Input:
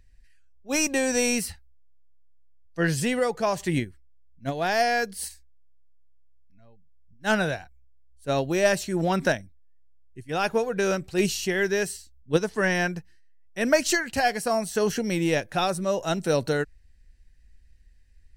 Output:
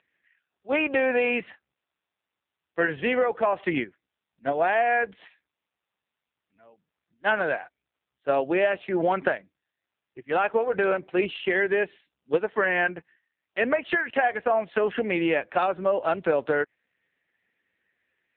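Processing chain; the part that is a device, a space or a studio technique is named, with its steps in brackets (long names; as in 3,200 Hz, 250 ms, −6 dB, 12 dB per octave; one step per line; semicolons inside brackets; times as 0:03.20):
0:10.95–0:12.40: dynamic equaliser 1,400 Hz, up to −5 dB, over −42 dBFS, Q 3.4
voicemail (band-pass filter 420–2,700 Hz; downward compressor 6 to 1, threshold −27 dBFS, peak gain reduction 11.5 dB; level +8.5 dB; AMR narrowband 5.9 kbit/s 8,000 Hz)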